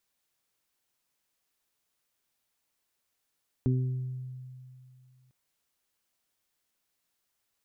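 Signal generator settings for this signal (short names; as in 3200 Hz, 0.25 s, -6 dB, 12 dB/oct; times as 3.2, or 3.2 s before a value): additive tone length 1.65 s, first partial 128 Hz, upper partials -3/-11 dB, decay 2.51 s, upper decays 0.63/0.93 s, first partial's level -22.5 dB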